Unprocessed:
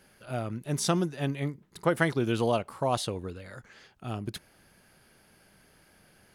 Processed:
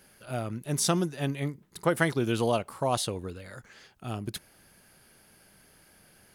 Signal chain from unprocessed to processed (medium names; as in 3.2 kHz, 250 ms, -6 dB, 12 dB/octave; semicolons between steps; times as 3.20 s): treble shelf 6.6 kHz +7.5 dB